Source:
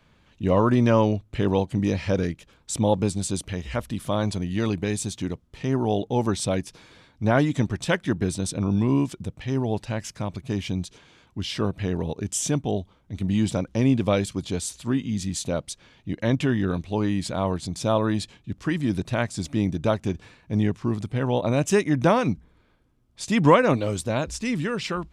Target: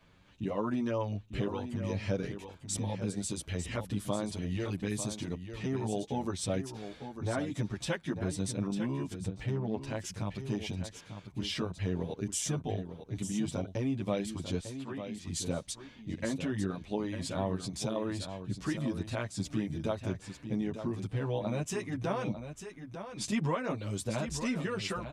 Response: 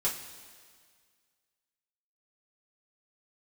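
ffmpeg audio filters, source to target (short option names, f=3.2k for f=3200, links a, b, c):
-filter_complex "[0:a]acompressor=threshold=-29dB:ratio=3,asettb=1/sr,asplit=3[a][b][c];[a]atrim=end=14.594[d];[b]atrim=start=14.59:end=15.27,asetpts=PTS-STARTPTS,afade=t=in:d=0.004:c=qsin,afade=t=out:st=0.676:d=0.004:c=qsin,bass=f=250:g=-13,treble=f=4k:g=-14[e];[c]atrim=start=15.266[f];[d][e]acrossfade=d=0.004:c1=hsin:c2=qsin[g];[g][f]acrossfade=d=0.004:c1=qsin:c2=hsin,aecho=1:1:898:0.335,asettb=1/sr,asplit=3[h][i][j];[h]atrim=end=9.274[k];[i]atrim=start=9.27:end=9.81,asetpts=PTS-STARTPTS,afade=t=in:d=0.004:c=qsin,afade=t=out:st=0.536:d=0.004:c=qsin,adynamicsmooth=sensitivity=7:basefreq=2.2k[l];[j]atrim=start=9.806[m];[k][l]acrossfade=d=0.004:c1=hsin:c2=qsin[n];[n][m]acrossfade=d=0.004:c1=qsin:c2=hsin,asplit=2[o][p];[p]adelay=8.8,afreqshift=1.1[q];[o][q]amix=inputs=2:normalize=1"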